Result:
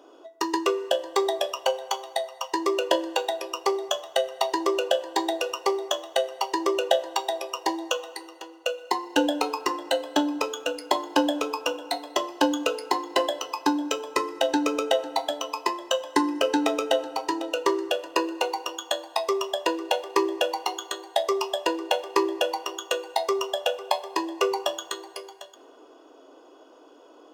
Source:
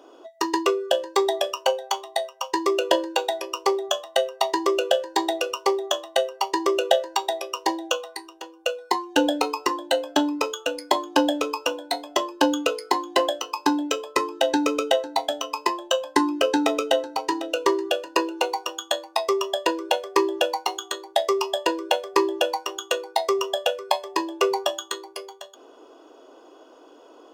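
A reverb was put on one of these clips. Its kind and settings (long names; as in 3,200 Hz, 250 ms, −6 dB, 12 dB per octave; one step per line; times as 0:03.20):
feedback delay network reverb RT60 2.7 s, low-frequency decay 0.8×, high-frequency decay 0.5×, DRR 14 dB
level −2.5 dB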